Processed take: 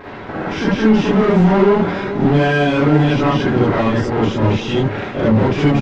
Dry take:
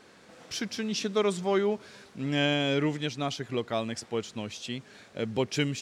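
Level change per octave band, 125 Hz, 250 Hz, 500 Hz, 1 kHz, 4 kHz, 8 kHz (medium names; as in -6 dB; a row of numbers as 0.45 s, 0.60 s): +19.5 dB, +17.5 dB, +14.0 dB, +17.0 dB, +5.0 dB, no reading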